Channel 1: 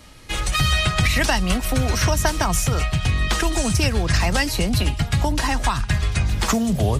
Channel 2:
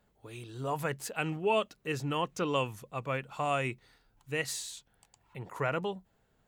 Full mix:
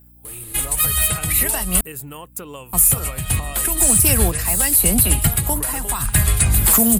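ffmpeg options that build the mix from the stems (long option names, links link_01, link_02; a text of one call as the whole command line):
ffmpeg -i stem1.wav -i stem2.wav -filter_complex "[0:a]adelay=250,volume=-2.5dB,asplit=3[link_01][link_02][link_03];[link_01]atrim=end=1.81,asetpts=PTS-STARTPTS,afade=type=out:start_time=1.806:duration=0.004:curve=hsin[link_04];[link_02]atrim=start=1.81:end=2.73,asetpts=PTS-STARTPTS,volume=0[link_05];[link_03]atrim=start=2.73,asetpts=PTS-STARTPTS,afade=type=in:duration=0.004:curve=hsin[link_06];[link_04][link_05][link_06]concat=n=3:v=0:a=1[link_07];[1:a]acompressor=threshold=-35dB:ratio=6,aeval=exprs='val(0)+0.00282*(sin(2*PI*60*n/s)+sin(2*PI*2*60*n/s)/2+sin(2*PI*3*60*n/s)/3+sin(2*PI*4*60*n/s)/4+sin(2*PI*5*60*n/s)/5)':channel_layout=same,volume=-5dB,asplit=2[link_08][link_09];[link_09]apad=whole_len=319607[link_10];[link_07][link_10]sidechaincompress=threshold=-52dB:ratio=8:attack=23:release=297[link_11];[link_11][link_08]amix=inputs=2:normalize=0,acontrast=87,aexciter=amount=11.1:drive=9.3:freq=8600,alimiter=limit=-3.5dB:level=0:latency=1:release=89" out.wav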